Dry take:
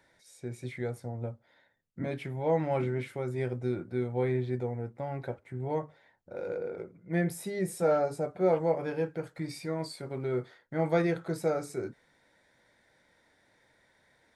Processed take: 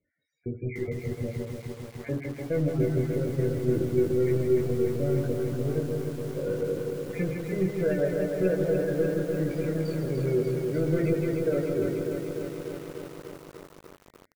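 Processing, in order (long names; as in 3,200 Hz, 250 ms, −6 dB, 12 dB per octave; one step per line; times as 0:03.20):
time-frequency cells dropped at random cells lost 32%
Bessel low-pass filter 2,500 Hz
parametric band 89 Hz +3 dB 2.2 octaves
leveller curve on the samples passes 3
double-tracking delay 21 ms −5 dB
single-tap delay 158 ms −5.5 dB
feedback delay network reverb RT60 1.3 s, low-frequency decay 0.75×, high-frequency decay 0.65×, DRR 11.5 dB
spectral peaks only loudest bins 32
Butterworth band-reject 940 Hz, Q 0.87
feedback echo at a low word length 296 ms, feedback 80%, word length 7 bits, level −5 dB
level −5 dB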